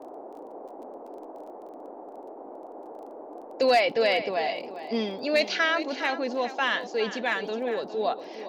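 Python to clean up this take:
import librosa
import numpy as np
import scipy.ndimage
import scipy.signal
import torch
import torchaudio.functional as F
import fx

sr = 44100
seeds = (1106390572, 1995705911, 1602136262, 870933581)

y = fx.fix_declip(x, sr, threshold_db=-14.0)
y = fx.fix_declick_ar(y, sr, threshold=6.5)
y = fx.noise_reduce(y, sr, print_start_s=1.68, print_end_s=2.18, reduce_db=29.0)
y = fx.fix_echo_inverse(y, sr, delay_ms=408, level_db=-12.5)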